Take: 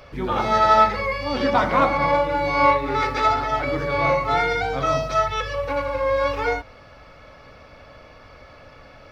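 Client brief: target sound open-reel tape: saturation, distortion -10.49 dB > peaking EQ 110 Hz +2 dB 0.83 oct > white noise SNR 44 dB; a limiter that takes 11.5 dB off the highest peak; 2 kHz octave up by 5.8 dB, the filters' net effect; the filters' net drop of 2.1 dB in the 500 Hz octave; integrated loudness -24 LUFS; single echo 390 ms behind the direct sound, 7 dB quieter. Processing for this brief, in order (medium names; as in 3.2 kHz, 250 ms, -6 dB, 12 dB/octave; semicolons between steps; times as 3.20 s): peaking EQ 500 Hz -3 dB; peaking EQ 2 kHz +7 dB; peak limiter -15 dBFS; delay 390 ms -7 dB; saturation -24 dBFS; peaking EQ 110 Hz +2 dB 0.83 oct; white noise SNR 44 dB; trim +3 dB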